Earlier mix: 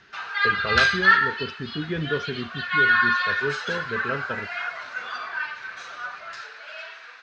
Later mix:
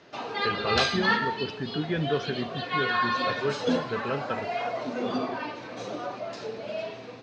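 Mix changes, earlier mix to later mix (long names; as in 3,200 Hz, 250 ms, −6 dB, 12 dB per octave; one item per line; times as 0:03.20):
background: remove high-pass with resonance 1,500 Hz, resonance Q 4.8
master: add high-pass filter 90 Hz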